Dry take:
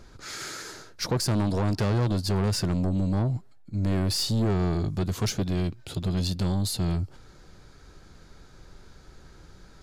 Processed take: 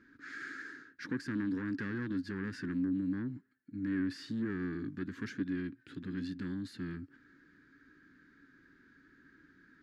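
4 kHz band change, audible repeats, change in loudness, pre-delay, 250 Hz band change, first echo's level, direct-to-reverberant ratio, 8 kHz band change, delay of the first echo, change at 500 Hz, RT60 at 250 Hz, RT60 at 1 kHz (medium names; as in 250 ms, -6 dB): -21.0 dB, no echo, -11.0 dB, no reverb, -6.0 dB, no echo, no reverb, under -25 dB, no echo, -14.5 dB, no reverb, no reverb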